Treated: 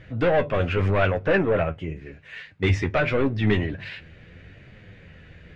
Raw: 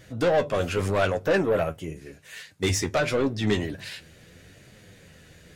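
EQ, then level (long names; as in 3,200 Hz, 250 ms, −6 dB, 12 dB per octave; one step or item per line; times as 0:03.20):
low-pass with resonance 2,400 Hz, resonance Q 1.6
low-shelf EQ 120 Hz +10.5 dB
0.0 dB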